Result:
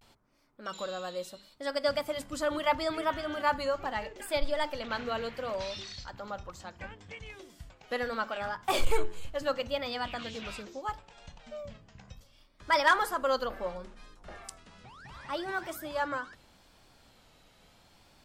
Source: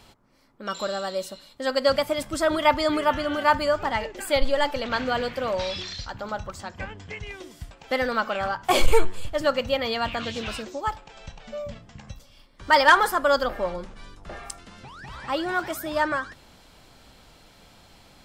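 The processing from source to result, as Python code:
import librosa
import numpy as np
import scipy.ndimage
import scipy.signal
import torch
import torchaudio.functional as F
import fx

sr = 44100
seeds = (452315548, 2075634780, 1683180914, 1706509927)

y = fx.hum_notches(x, sr, base_hz=50, count=9)
y = fx.vibrato(y, sr, rate_hz=0.73, depth_cents=100.0)
y = y * 10.0 ** (-8.0 / 20.0)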